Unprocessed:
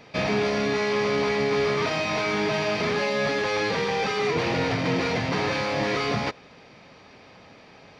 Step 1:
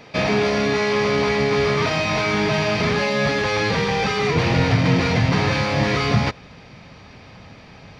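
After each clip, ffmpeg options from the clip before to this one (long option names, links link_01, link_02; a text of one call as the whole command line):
ffmpeg -i in.wav -af "asubboost=boost=3.5:cutoff=180,volume=5dB" out.wav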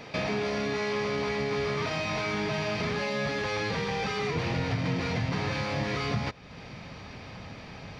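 ffmpeg -i in.wav -af "acompressor=threshold=-36dB:ratio=2" out.wav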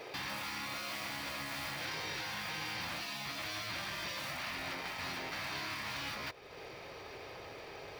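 ffmpeg -i in.wav -af "lowshelf=frequency=290:width_type=q:width=3:gain=-9,acrusher=bits=5:mode=log:mix=0:aa=0.000001,afftfilt=real='re*lt(hypot(re,im),0.0631)':imag='im*lt(hypot(re,im),0.0631)':win_size=1024:overlap=0.75,volume=-3.5dB" out.wav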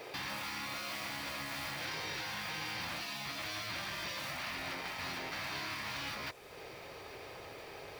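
ffmpeg -i in.wav -af "acrusher=bits=9:mix=0:aa=0.000001" out.wav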